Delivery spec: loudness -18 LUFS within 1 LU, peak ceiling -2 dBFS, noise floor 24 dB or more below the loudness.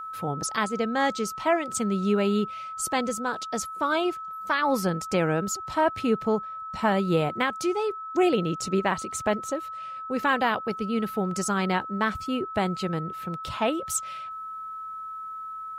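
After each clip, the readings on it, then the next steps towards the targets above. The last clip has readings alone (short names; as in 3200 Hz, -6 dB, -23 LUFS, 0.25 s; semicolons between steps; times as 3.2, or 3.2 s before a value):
steady tone 1300 Hz; tone level -34 dBFS; loudness -27.0 LUFS; peak -11.5 dBFS; loudness target -18.0 LUFS
-> notch 1300 Hz, Q 30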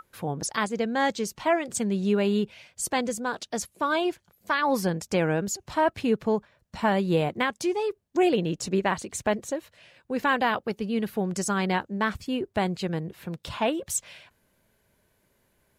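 steady tone none; loudness -27.5 LUFS; peak -12.0 dBFS; loudness target -18.0 LUFS
-> gain +9.5 dB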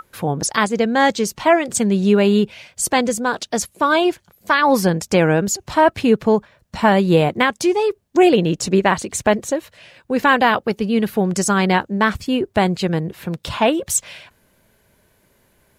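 loudness -18.0 LUFS; peak -2.5 dBFS; noise floor -61 dBFS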